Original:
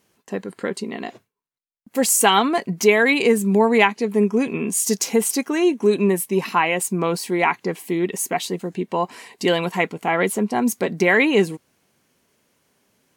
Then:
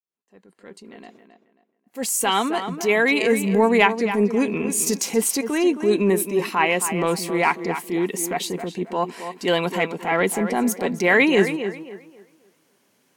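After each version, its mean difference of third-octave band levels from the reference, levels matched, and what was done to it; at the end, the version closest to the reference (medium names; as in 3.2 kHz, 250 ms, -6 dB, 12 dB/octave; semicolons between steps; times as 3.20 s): 5.0 dB: fade-in on the opening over 3.96 s; high-pass 150 Hz; transient shaper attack -7 dB, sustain -1 dB; on a send: tape echo 268 ms, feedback 31%, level -8.5 dB, low-pass 2.8 kHz; on the sum: trim +1 dB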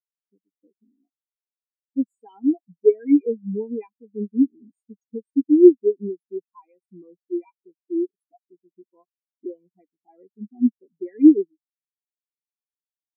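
20.0 dB: in parallel at +0.5 dB: compression, threshold -23 dBFS, peak gain reduction 13 dB; on the sum: spectral gate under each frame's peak -15 dB strong; small resonant body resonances 290/2400 Hz, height 9 dB, ringing for 35 ms; spectral contrast expander 4:1; trim -2 dB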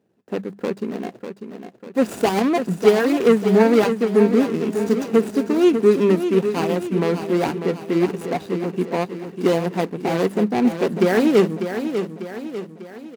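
8.5 dB: median filter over 41 samples; high-pass 120 Hz 12 dB/octave; hum notches 50/100/150/200 Hz; on a send: feedback delay 596 ms, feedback 49%, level -8.5 dB; on the sum: trim +3.5 dB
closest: first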